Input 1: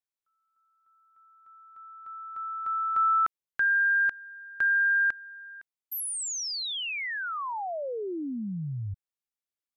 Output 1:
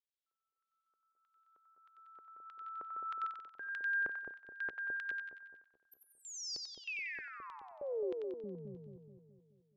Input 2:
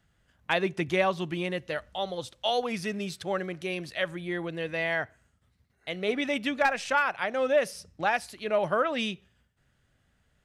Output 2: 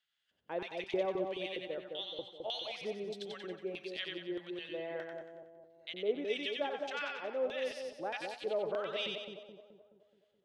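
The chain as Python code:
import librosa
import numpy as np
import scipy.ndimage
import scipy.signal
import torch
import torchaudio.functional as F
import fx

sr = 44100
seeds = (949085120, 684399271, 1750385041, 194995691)

y = fx.filter_lfo_bandpass(x, sr, shape='square', hz=1.6, low_hz=420.0, high_hz=3400.0, q=2.3)
y = fx.echo_split(y, sr, split_hz=840.0, low_ms=213, high_ms=92, feedback_pct=52, wet_db=-3.5)
y = y * 10.0 ** (-3.0 / 20.0)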